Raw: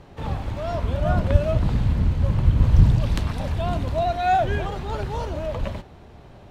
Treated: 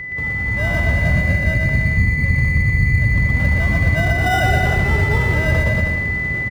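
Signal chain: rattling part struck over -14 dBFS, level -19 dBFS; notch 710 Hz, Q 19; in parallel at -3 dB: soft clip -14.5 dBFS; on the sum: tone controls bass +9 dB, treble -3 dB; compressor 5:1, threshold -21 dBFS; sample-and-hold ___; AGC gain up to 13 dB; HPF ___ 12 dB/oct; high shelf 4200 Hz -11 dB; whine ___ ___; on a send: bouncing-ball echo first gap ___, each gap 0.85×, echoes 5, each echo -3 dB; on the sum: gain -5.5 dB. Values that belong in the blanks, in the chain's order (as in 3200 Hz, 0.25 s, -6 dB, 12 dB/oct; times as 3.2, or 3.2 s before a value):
20×, 57 Hz, 2000 Hz, -21 dBFS, 0.12 s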